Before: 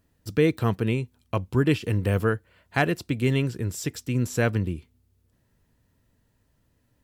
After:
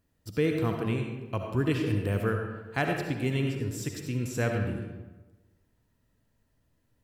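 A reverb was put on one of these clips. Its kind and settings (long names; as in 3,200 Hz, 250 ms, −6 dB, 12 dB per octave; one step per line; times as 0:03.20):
comb and all-pass reverb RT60 1.2 s, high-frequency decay 0.6×, pre-delay 30 ms, DRR 2.5 dB
level −6 dB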